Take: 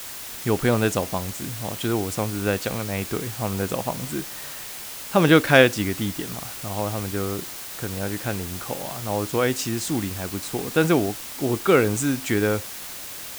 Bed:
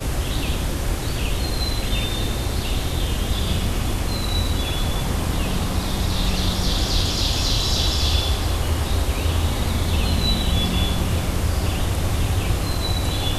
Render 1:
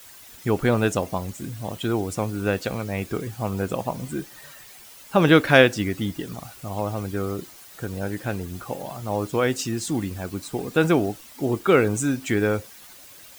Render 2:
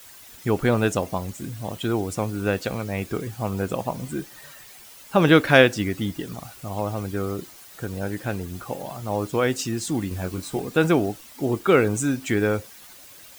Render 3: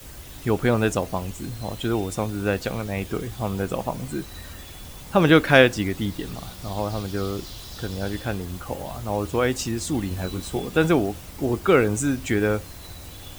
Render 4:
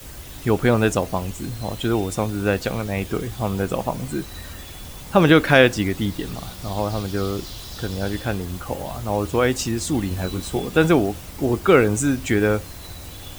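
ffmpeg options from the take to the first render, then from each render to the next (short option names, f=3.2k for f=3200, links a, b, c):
-af "afftdn=nr=12:nf=-36"
-filter_complex "[0:a]asettb=1/sr,asplit=3[a][b][c];[a]atrim=end=10.094[d];[b]atrim=start=10.09:end=10.6,asetpts=PTS-STARTPTS,afade=t=in:d=0.004:c=qsin,afade=t=out:st=0.506:d=0.004:c=qsin,asplit=2[e][f];[f]adelay=22,volume=-4dB[g];[e][g]amix=inputs=2:normalize=0,atrim=end_sample=22491[h];[c]atrim=start=10.596[i];[d][h]acrossfade=d=0.004:c1=hsin:c2=qsin[j];[j][i]acrossfade=d=0.004:c1=qsin:c2=hsin"
-filter_complex "[1:a]volume=-19dB[a];[0:a][a]amix=inputs=2:normalize=0"
-af "volume=3dB,alimiter=limit=-2dB:level=0:latency=1"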